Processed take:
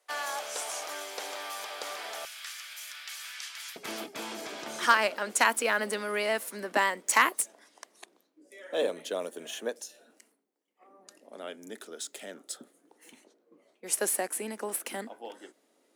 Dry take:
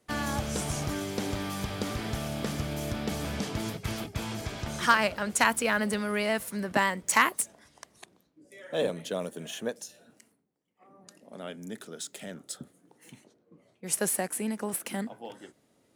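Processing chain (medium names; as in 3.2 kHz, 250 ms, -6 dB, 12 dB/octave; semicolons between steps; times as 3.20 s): high-pass 550 Hz 24 dB/octave, from 2.25 s 1.5 kHz, from 3.76 s 280 Hz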